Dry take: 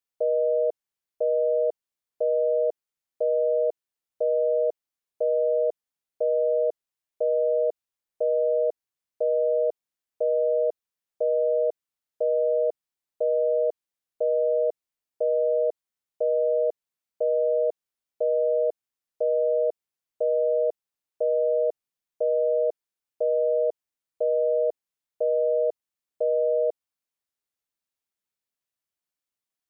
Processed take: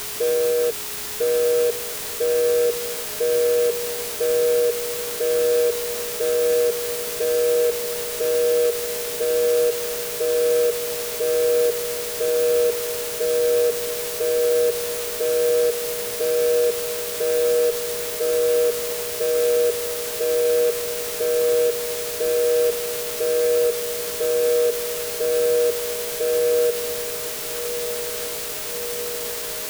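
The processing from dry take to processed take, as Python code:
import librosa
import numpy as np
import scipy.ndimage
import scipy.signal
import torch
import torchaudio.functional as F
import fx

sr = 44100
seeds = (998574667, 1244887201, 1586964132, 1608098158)

y = fx.wiener(x, sr, points=41)
y = fx.quant_dither(y, sr, seeds[0], bits=6, dither='triangular')
y = fx.formant_shift(y, sr, semitones=-4)
y = fx.echo_diffused(y, sr, ms=1338, feedback_pct=74, wet_db=-13)
y = y + 10.0 ** (-48.0 / 20.0) * np.sin(2.0 * np.pi * 420.0 * np.arange(len(y)) / sr)
y = y * 10.0 ** (6.0 / 20.0)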